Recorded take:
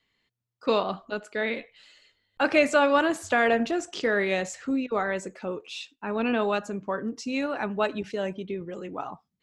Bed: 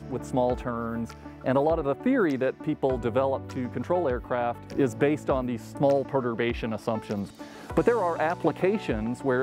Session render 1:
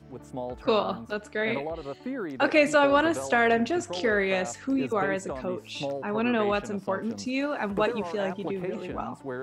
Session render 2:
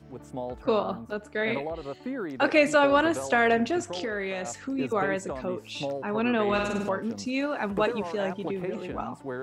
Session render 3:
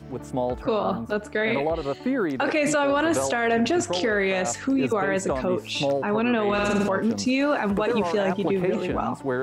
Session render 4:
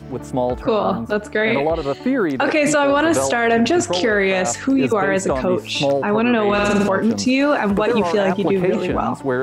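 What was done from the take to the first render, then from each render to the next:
add bed -10 dB
0.58–1.35 bell 4000 Hz -7 dB 2.7 oct; 3.85–4.79 compressor 4:1, threshold -28 dBFS; 6.44–6.89 flutter echo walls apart 8.6 m, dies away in 0.99 s
in parallel at +2 dB: negative-ratio compressor -29 dBFS, ratio -1; on the sum: limiter -13.5 dBFS, peak gain reduction 6 dB
gain +6 dB

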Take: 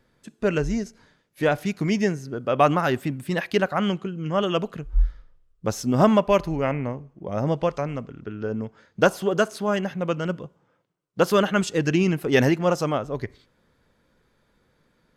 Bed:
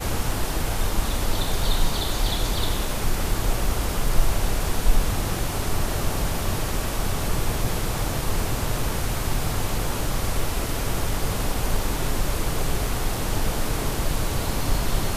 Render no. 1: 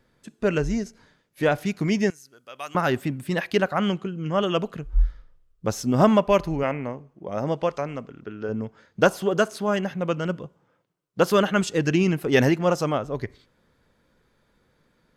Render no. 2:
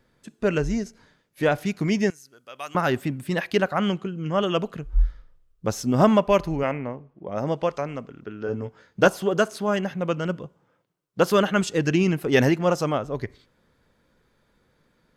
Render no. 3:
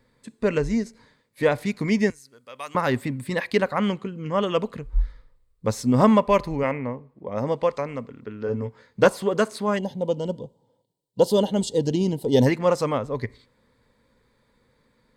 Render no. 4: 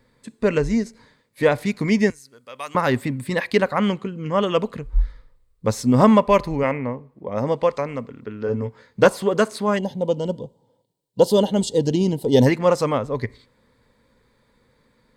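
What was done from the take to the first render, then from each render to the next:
2.1–2.75 pre-emphasis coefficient 0.97; 6.63–8.49 low shelf 130 Hz -11.5 dB
6.78–7.36 air absorption 160 m; 8.45–9.08 doubler 16 ms -7 dB
9.78–12.46 spectral gain 1000–2800 Hz -19 dB; ripple EQ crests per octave 0.97, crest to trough 7 dB
gain +3 dB; limiter -2 dBFS, peak gain reduction 1 dB

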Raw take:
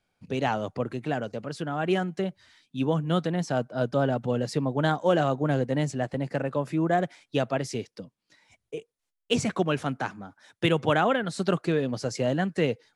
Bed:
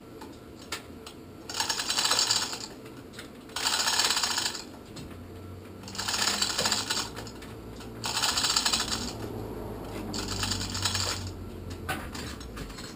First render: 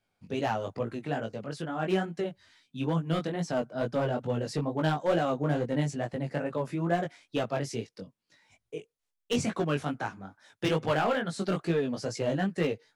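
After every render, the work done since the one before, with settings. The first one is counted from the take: hard clip -17.5 dBFS, distortion -17 dB; chorus 2.3 Hz, delay 17.5 ms, depth 3.7 ms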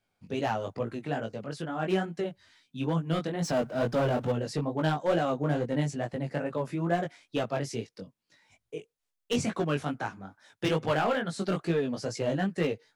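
3.42–4.32 power-law curve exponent 0.7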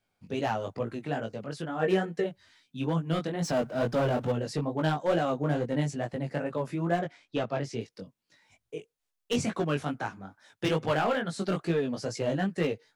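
1.8–2.27 small resonant body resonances 470/1800 Hz, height 17 dB, ringing for 90 ms; 6.99–7.81 air absorption 74 m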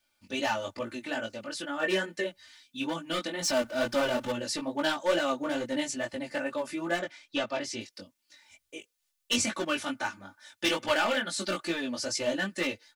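tilt shelf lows -7 dB, about 1300 Hz; comb 3.4 ms, depth 97%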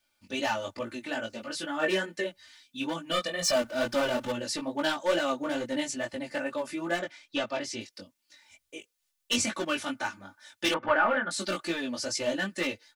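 1.31–1.9 doubler 13 ms -3 dB; 3.11–3.56 comb 1.7 ms, depth 80%; 10.74–11.31 synth low-pass 1400 Hz, resonance Q 1.8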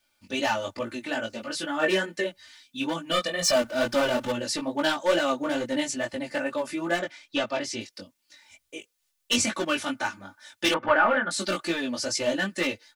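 gain +3.5 dB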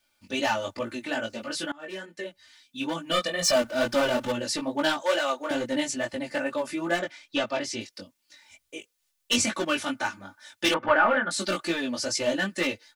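1.72–3.1 fade in, from -23.5 dB; 5.02–5.51 HPF 500 Hz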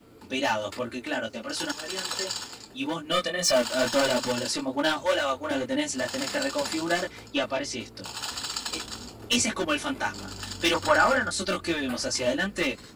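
add bed -7 dB

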